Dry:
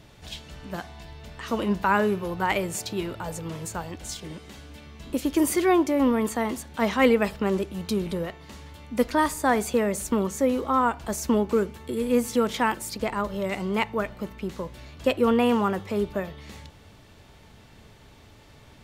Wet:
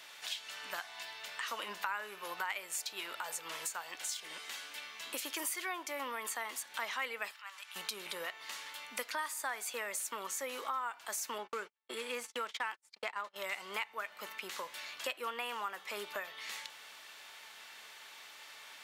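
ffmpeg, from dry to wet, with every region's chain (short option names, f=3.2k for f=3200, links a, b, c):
-filter_complex "[0:a]asettb=1/sr,asplit=3[a][b][c];[a]atrim=end=7.314[d];[b]atrim=start=7.31:end=7.76,asetpts=PTS-STARTPTS,afade=t=in:d=0.004:c=qsin,afade=t=out:st=0.446:d=0.004:c=qsin,acompressor=threshold=-37dB:ratio=2.5:attack=3.2:release=140:knee=1:detection=peak,highpass=f=940:w=0.5412,highpass=f=940:w=1.3066,highshelf=f=9k:g=-6[e];[c]atrim=start=7.756[f];[d][e]acrossfade=d=0.004:c1=hsin:c2=qsin[g];[g][f]acrossfade=d=0.004:c1=qsin:c2=hsin,asettb=1/sr,asplit=3[h][i][j];[h]atrim=end=11.384[k];[i]atrim=start=11.38:end=13.36,asetpts=PTS-STARTPTS,afade=t=in:d=0.004:c=qsin,afade=t=out:st=1.976:d=0.004:c=qsin,agate=range=-48dB:threshold=-32dB:ratio=16:release=100:detection=peak,adynamicsmooth=sensitivity=6.5:basefreq=6.4k[l];[j]atrim=start=13.356[m];[k][l]acrossfade=d=0.004:c1=hsin:c2=qsin[n];[n][m]acrossfade=d=0.004:c1=qsin:c2=hsin,highpass=1.4k,equalizer=f=5.4k:w=0.56:g=-2.5,acompressor=threshold=-46dB:ratio=4,volume=8dB"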